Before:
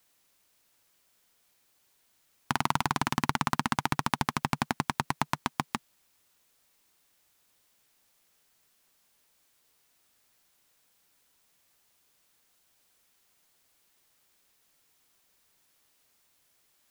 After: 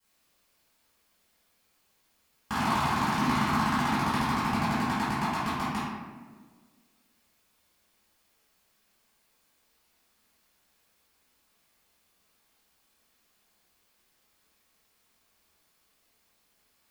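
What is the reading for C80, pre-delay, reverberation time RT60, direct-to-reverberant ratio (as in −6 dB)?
1.0 dB, 3 ms, 1.5 s, −17.0 dB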